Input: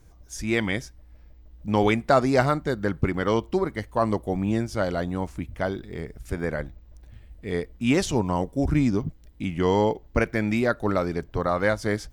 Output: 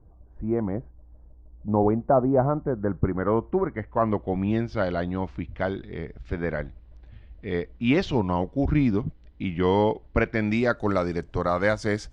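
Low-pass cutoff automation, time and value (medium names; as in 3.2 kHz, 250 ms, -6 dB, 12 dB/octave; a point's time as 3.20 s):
low-pass 24 dB/octave
2.41 s 1 kHz
3.83 s 2 kHz
4.51 s 4.1 kHz
10.19 s 4.1 kHz
10.87 s 8.1 kHz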